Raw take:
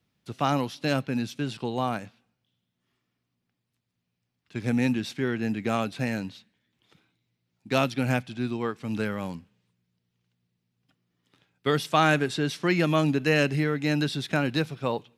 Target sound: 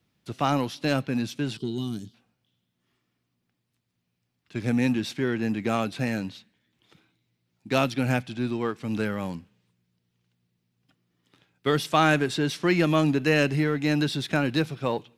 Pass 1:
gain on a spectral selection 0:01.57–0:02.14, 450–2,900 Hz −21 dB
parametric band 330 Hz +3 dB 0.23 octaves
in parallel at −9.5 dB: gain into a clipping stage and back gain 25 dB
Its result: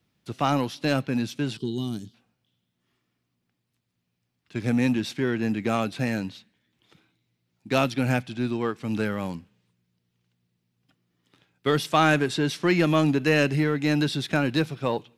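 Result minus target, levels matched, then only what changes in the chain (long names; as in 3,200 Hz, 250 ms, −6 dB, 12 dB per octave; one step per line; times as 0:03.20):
gain into a clipping stage and back: distortion −4 dB
change: gain into a clipping stage and back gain 33.5 dB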